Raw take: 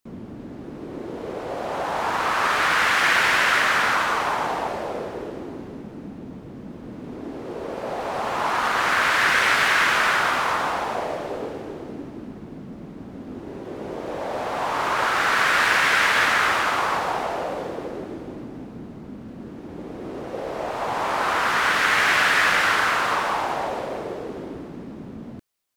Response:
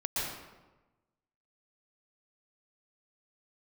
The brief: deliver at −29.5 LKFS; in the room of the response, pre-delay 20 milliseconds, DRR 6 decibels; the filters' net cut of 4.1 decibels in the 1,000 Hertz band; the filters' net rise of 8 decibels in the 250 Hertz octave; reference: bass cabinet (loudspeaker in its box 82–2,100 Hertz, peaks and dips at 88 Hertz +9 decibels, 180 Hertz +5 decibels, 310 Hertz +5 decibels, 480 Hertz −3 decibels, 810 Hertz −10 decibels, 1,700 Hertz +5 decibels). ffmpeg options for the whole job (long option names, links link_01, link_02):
-filter_complex "[0:a]equalizer=frequency=250:width_type=o:gain=6.5,equalizer=frequency=1000:width_type=o:gain=-3.5,asplit=2[link_01][link_02];[1:a]atrim=start_sample=2205,adelay=20[link_03];[link_02][link_03]afir=irnorm=-1:irlink=0,volume=-12.5dB[link_04];[link_01][link_04]amix=inputs=2:normalize=0,highpass=frequency=82:width=0.5412,highpass=frequency=82:width=1.3066,equalizer=frequency=88:width_type=q:width=4:gain=9,equalizer=frequency=180:width_type=q:width=4:gain=5,equalizer=frequency=310:width_type=q:width=4:gain=5,equalizer=frequency=480:width_type=q:width=4:gain=-3,equalizer=frequency=810:width_type=q:width=4:gain=-10,equalizer=frequency=1700:width_type=q:width=4:gain=5,lowpass=frequency=2100:width=0.5412,lowpass=frequency=2100:width=1.3066,volume=-7dB"